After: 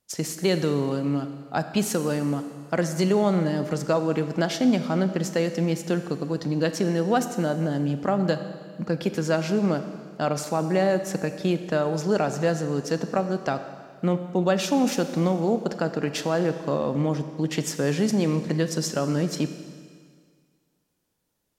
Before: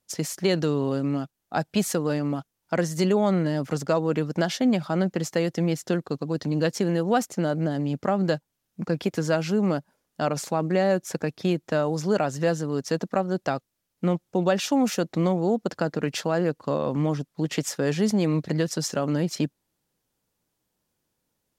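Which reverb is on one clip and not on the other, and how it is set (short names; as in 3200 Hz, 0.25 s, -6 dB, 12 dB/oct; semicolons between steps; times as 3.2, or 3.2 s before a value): Schroeder reverb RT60 1.9 s, combs from 28 ms, DRR 9 dB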